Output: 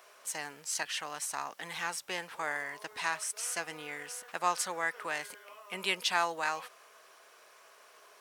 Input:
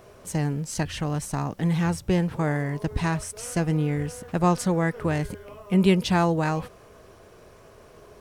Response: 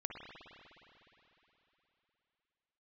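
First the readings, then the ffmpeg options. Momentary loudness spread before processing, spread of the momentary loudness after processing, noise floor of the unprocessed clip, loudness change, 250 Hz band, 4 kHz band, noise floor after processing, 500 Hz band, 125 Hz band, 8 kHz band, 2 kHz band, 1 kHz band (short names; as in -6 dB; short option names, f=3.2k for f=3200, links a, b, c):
9 LU, 10 LU, -51 dBFS, -9.5 dB, -26.5 dB, 0.0 dB, -59 dBFS, -13.5 dB, -33.0 dB, 0.0 dB, -0.5 dB, -5.0 dB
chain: -af "highpass=1.1k"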